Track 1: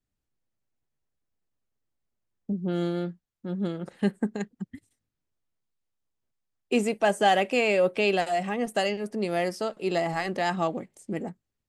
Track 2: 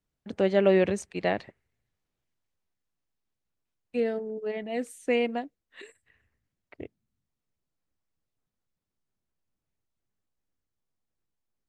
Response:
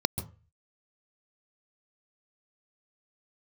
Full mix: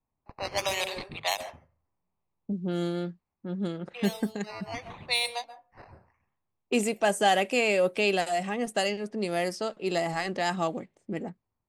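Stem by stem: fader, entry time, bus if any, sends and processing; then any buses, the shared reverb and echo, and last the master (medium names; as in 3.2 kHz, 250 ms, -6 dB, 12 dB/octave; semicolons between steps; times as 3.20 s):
-2.0 dB, 0.00 s, no send, none
0.0 dB, 0.00 s, send -5 dB, high-pass 780 Hz 24 dB/octave; decimation with a swept rate 10×, swing 60% 0.72 Hz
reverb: on, RT60 0.35 s, pre-delay 130 ms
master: level-controlled noise filter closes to 1.1 kHz, open at -24.5 dBFS; treble shelf 4.9 kHz +9.5 dB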